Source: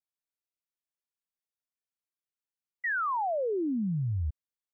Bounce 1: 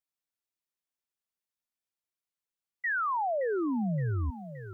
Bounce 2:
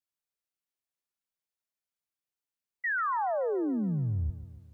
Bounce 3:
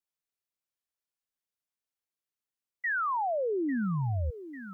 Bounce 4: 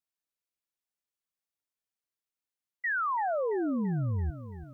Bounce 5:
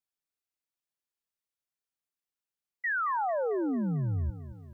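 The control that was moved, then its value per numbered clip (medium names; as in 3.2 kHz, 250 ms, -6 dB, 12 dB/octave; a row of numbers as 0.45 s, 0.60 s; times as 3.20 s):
bit-crushed delay, time: 570 ms, 142 ms, 847 ms, 336 ms, 223 ms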